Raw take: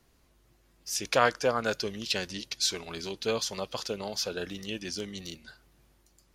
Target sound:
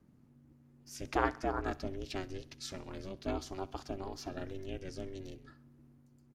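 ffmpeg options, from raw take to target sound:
-af "firequalizer=gain_entry='entry(120,0);entry(300,-12);entry(920,-11);entry(3500,-22);entry(7200,-20)':delay=0.05:min_phase=1,aeval=exprs='val(0)*sin(2*PI*190*n/s)':c=same,aecho=1:1:65|130|195|260:0.0891|0.0499|0.0279|0.0157,volume=7dB"

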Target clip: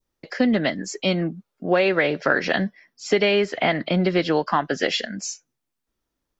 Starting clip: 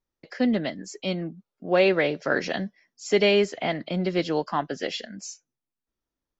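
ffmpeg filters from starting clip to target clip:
-filter_complex "[0:a]adynamicequalizer=threshold=0.0126:dfrequency=1600:dqfactor=1.1:tfrequency=1600:tqfactor=1.1:attack=5:release=100:ratio=0.375:range=2.5:mode=boostabove:tftype=bell,acompressor=threshold=-23dB:ratio=6,asettb=1/sr,asplit=3[a][b][c];[a]atrim=end=2.064[d];[b]atrim=start=2.06:end=4.52,asetpts=PTS-STARTPTS,afade=t=in:d=0.004:c=qsin,afade=t=out:st=2.456:d=0.004:c=qsin,equalizer=f=6.8k:w=2.5:g=-8[e];[c]atrim=start=4.516[f];[d][e]acrossfade=d=0.004:c1=hsin:c2=qsin[g];[g][f]acrossfade=d=0.004:c1=qsin:c2=hsin,volume=7.5dB"

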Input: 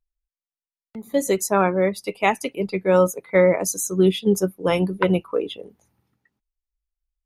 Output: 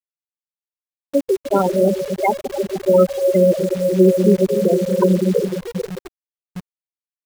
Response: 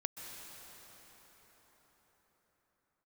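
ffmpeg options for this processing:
-filter_complex "[1:a]atrim=start_sample=2205,asetrate=34398,aresample=44100[a];[0:a][a]afir=irnorm=-1:irlink=0,afftfilt=real='re*gte(hypot(re,im),0.501)':imag='im*gte(hypot(re,im),0.501)':win_size=1024:overlap=0.75,acrusher=bits=7:dc=4:mix=0:aa=0.000001,volume=4.5dB"

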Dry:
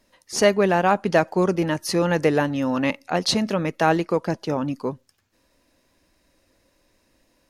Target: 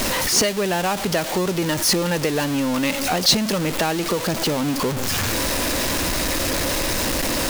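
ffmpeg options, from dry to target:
-filter_complex "[0:a]aeval=exprs='val(0)+0.5*0.1*sgn(val(0))':c=same,acrossover=split=2800[a][b];[a]acompressor=threshold=-24dB:ratio=6[c];[c][b]amix=inputs=2:normalize=0,volume=4dB"

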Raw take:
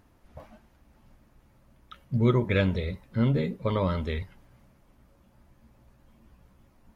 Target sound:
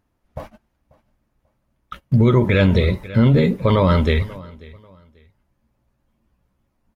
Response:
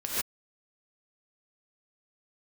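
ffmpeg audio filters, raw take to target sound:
-af "agate=range=-23dB:threshold=-48dB:ratio=16:detection=peak,aecho=1:1:539|1078:0.0668|0.0174,alimiter=level_in=19.5dB:limit=-1dB:release=50:level=0:latency=1,volume=-5.5dB"

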